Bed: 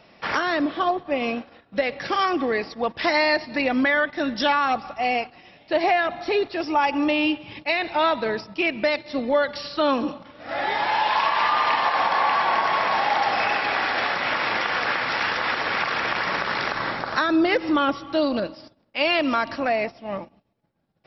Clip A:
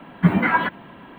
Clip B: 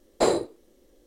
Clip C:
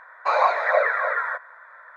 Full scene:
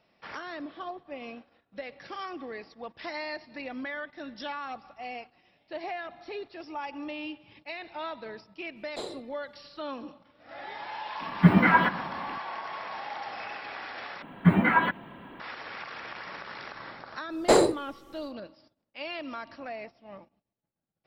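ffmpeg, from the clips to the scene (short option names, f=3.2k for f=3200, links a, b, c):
-filter_complex "[2:a]asplit=2[a][b];[1:a]asplit=2[c][d];[0:a]volume=-16dB[e];[a]equalizer=f=3.6k:t=o:w=0.51:g=14[f];[c]asplit=2[g][h];[h]adelay=123,lowpass=f=2k:p=1,volume=-15dB,asplit=2[i][j];[j]adelay=123,lowpass=f=2k:p=1,volume=0.53,asplit=2[k][l];[l]adelay=123,lowpass=f=2k:p=1,volume=0.53,asplit=2[m][n];[n]adelay=123,lowpass=f=2k:p=1,volume=0.53,asplit=2[o][p];[p]adelay=123,lowpass=f=2k:p=1,volume=0.53[q];[g][i][k][m][o][q]amix=inputs=6:normalize=0[r];[b]aeval=exprs='0.422*sin(PI/2*1.58*val(0)/0.422)':c=same[s];[e]asplit=2[t][u];[t]atrim=end=14.224[v];[d]atrim=end=1.18,asetpts=PTS-STARTPTS,volume=-3.5dB[w];[u]atrim=start=15.396[x];[f]atrim=end=1.06,asetpts=PTS-STARTPTS,volume=-17dB,afade=t=in:d=0.004:c=hsin,afade=t=out:st=1.056:d=0.004:c=hsin,adelay=8760[y];[r]atrim=end=1.18,asetpts=PTS-STARTPTS,volume=-1.5dB,afade=t=in:d=0.004:c=hsin,afade=t=out:st=1.176:d=0.004:c=hsin,adelay=11200[z];[s]atrim=end=1.06,asetpts=PTS-STARTPTS,volume=-4dB,afade=t=in:d=0.1,afade=t=out:st=0.96:d=0.1,adelay=17280[aa];[v][w]acrossfade=d=0.004:c1=hsin:c2=hsin[ab];[ab][x]acrossfade=d=0.004:c1=hsin:c2=hsin[ac];[ac][y][z][aa]amix=inputs=4:normalize=0"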